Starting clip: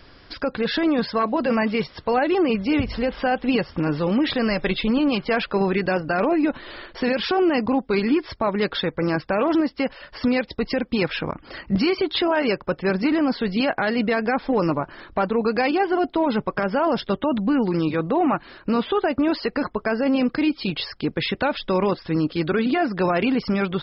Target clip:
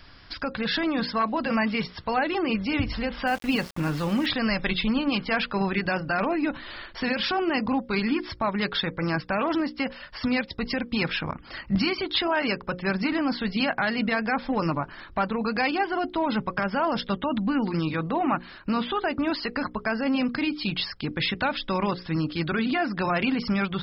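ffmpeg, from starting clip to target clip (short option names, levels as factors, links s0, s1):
-filter_complex "[0:a]equalizer=f=440:w=1.1:g=-9,bandreject=f=60:t=h:w=6,bandreject=f=120:t=h:w=6,bandreject=f=180:t=h:w=6,bandreject=f=240:t=h:w=6,bandreject=f=300:t=h:w=6,bandreject=f=360:t=h:w=6,bandreject=f=420:t=h:w=6,bandreject=f=480:t=h:w=6,bandreject=f=540:t=h:w=6,asettb=1/sr,asplit=3[s0][s1][s2];[s0]atrim=end=3.274[s3];[s1]atrim=start=3.27:end=4.26,asetpts=PTS-STARTPTS,afade=t=in:d=0.004:c=qsin,afade=t=out:st=0.986:d=0.004:c=qsin,aeval=exprs='val(0)*gte(abs(val(0)),0.0158)':c=same[s4];[s2]atrim=start=4.256[s5];[s3][s4]acrossfade=d=0.004:c1=hsin:c2=qsin[s6];[s6][s5]acrossfade=d=0.004:c1=qsin:c2=hsin"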